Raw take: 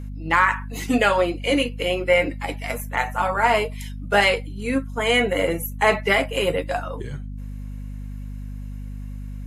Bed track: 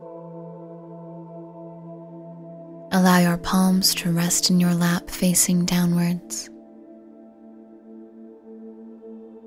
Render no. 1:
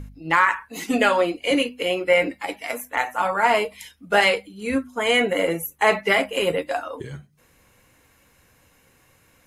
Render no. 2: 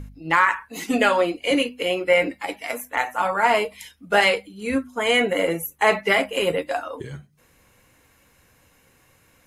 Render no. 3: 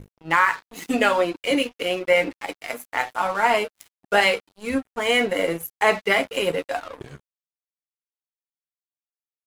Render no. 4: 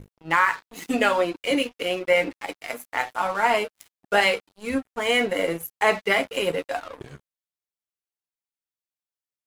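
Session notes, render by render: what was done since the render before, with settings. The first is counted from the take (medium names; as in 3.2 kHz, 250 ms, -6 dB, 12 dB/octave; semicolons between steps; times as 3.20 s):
de-hum 50 Hz, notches 5
no audible change
crossover distortion -37 dBFS
trim -1.5 dB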